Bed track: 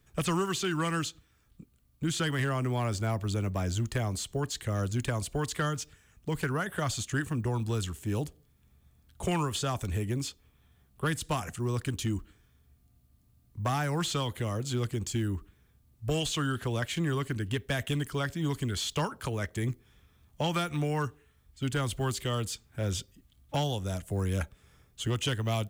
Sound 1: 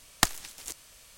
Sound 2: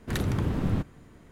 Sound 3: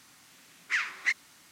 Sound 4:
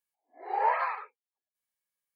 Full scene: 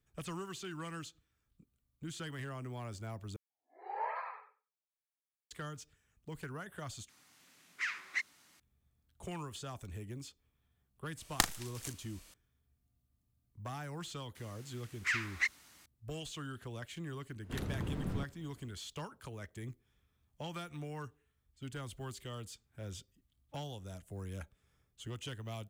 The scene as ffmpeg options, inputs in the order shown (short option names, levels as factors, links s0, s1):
-filter_complex "[3:a]asplit=2[s0][s1];[0:a]volume=0.211[s2];[4:a]asplit=2[s3][s4];[s4]adelay=93,lowpass=f=3200:p=1,volume=0.422,asplit=2[s5][s6];[s6]adelay=93,lowpass=f=3200:p=1,volume=0.17,asplit=2[s7][s8];[s8]adelay=93,lowpass=f=3200:p=1,volume=0.17[s9];[s3][s5][s7][s9]amix=inputs=4:normalize=0[s10];[1:a]asplit=2[s11][s12];[s12]adelay=38,volume=0.355[s13];[s11][s13]amix=inputs=2:normalize=0[s14];[s1]highshelf=f=12000:g=4.5[s15];[s2]asplit=3[s16][s17][s18];[s16]atrim=end=3.364[s19];[s10]atrim=end=2.15,asetpts=PTS-STARTPTS,volume=0.237[s20];[s17]atrim=start=5.506:end=7.094[s21];[s0]atrim=end=1.51,asetpts=PTS-STARTPTS,volume=0.398[s22];[s18]atrim=start=8.596[s23];[s14]atrim=end=1.17,asetpts=PTS-STARTPTS,volume=0.501,afade=t=in:d=0.004:c=hsin,afade=t=out:st=1.166:d=0.004:c=hsin,adelay=11170[s24];[s15]atrim=end=1.51,asetpts=PTS-STARTPTS,volume=0.596,afade=t=in:d=0.004:c=hsin,afade=t=out:st=1.506:d=0.004:c=hsin,adelay=14350[s25];[2:a]atrim=end=1.31,asetpts=PTS-STARTPTS,volume=0.282,afade=t=in:d=0.004:c=hsin,afade=t=out:st=1.306:d=0.004:c=hsin,adelay=17420[s26];[s19][s20]acrossfade=d=0.004:c1=hsin:c2=hsin[s27];[s27][s21]acrossfade=d=0.004:c1=hsin:c2=hsin[s28];[s28][s22]acrossfade=d=0.004:c1=hsin:c2=hsin[s29];[s29][s23]acrossfade=d=0.004:c1=hsin:c2=hsin[s30];[s30][s24][s25][s26]amix=inputs=4:normalize=0"